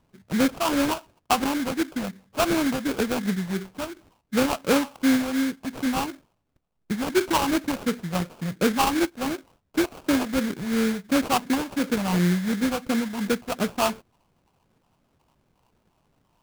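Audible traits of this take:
phaser sweep stages 6, 2.8 Hz, lowest notch 340–1,400 Hz
aliases and images of a low sample rate 1,900 Hz, jitter 20%

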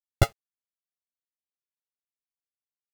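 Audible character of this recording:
a buzz of ramps at a fixed pitch in blocks of 64 samples
sample-and-hold tremolo
a quantiser's noise floor 10 bits, dither none
a shimmering, thickened sound

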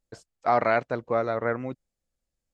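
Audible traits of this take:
background noise floor −85 dBFS
spectral slope −1.0 dB per octave

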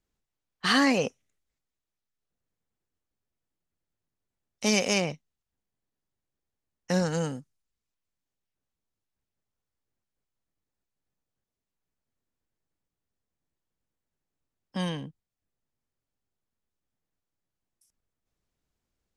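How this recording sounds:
background noise floor −88 dBFS
spectral slope −4.0 dB per octave

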